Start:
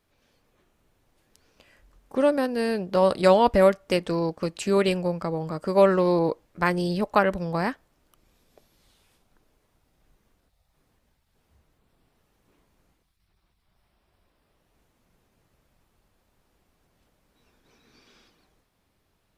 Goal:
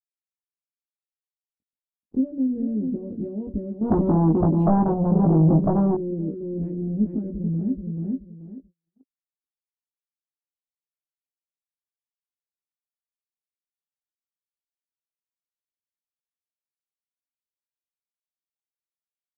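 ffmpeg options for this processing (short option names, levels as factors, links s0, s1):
-filter_complex "[0:a]lowpass=2400,acrusher=bits=7:mix=0:aa=0.000001,aecho=1:1:431|862|1293:0.316|0.0696|0.0153,acompressor=threshold=0.0398:ratio=6,asubboost=boost=7.5:cutoff=230,asoftclip=type=tanh:threshold=0.112,firequalizer=gain_entry='entry(140,0);entry(250,13);entry(1100,-28)':delay=0.05:min_phase=1,asettb=1/sr,asplit=3[s0][s1][s2];[s0]atrim=end=3.814[s3];[s1]atrim=start=3.81:end=5.95,asetpts=PTS-STARTPTS,afade=t=in:d=0.004:c=qsin,afade=t=out:st=2.136:d=0.004:c=qsin,aeval=exprs='0.376*sin(PI/2*2.82*val(0)/0.376)':c=same[s4];[s2]atrim=start=5.946[s5];[s3][s4]acrossfade=d=0.004:c1=hsin:c2=qsin[s6];[s6][s5]acrossfade=d=0.004:c1=qsin:c2=hsin,asplit=2[s7][s8];[s8]adelay=19,volume=0.75[s9];[s7][s9]amix=inputs=2:normalize=0,agate=range=0.0178:threshold=0.00891:ratio=16:detection=peak,volume=0.422"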